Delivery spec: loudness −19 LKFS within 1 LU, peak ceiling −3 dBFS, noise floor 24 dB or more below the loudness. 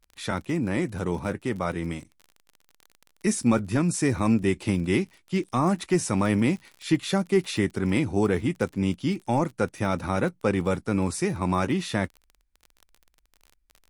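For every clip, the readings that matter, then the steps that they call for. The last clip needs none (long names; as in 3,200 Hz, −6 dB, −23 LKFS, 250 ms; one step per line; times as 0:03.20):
crackle rate 36 per second; integrated loudness −26.0 LKFS; sample peak −10.0 dBFS; target loudness −19.0 LKFS
→ click removal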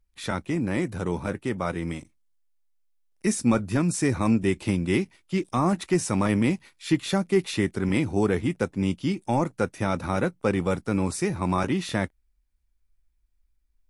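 crackle rate 0 per second; integrated loudness −26.0 LKFS; sample peak −10.5 dBFS; target loudness −19.0 LKFS
→ level +7 dB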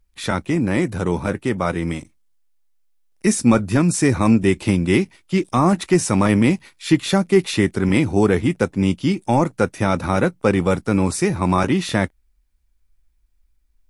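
integrated loudness −19.0 LKFS; sample peak −3.5 dBFS; background noise floor −63 dBFS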